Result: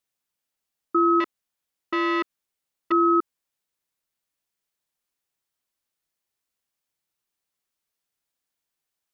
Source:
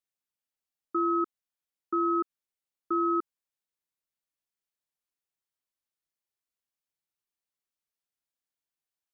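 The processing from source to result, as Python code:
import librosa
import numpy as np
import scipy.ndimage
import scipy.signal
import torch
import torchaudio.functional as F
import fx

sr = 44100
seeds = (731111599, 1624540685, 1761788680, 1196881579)

y = fx.transformer_sat(x, sr, knee_hz=1200.0, at=(1.2, 2.92))
y = y * librosa.db_to_amplitude(7.5)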